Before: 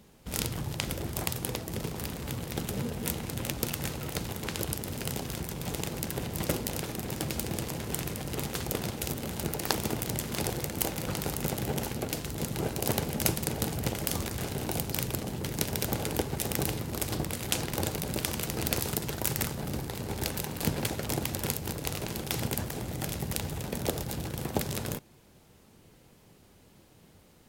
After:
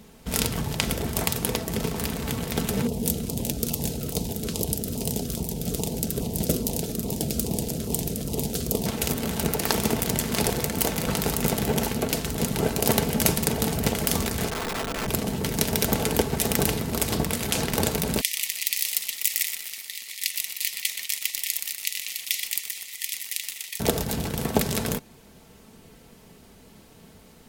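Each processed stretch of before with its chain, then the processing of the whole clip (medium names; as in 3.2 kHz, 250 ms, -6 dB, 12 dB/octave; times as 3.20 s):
2.87–8.86 s: band-stop 1.1 kHz, Q 23 + LFO notch saw down 2.4 Hz 780–1700 Hz + peaking EQ 1.9 kHz -13.5 dB 1.4 oct
14.50–15.08 s: low-pass 1.6 kHz 24 dB/octave + integer overflow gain 32 dB
18.21–23.80 s: brick-wall FIR high-pass 1.8 kHz + bit-crushed delay 123 ms, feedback 55%, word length 7-bit, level -8 dB
whole clip: comb 4.5 ms, depth 40%; loudness maximiser +8 dB; trim -1 dB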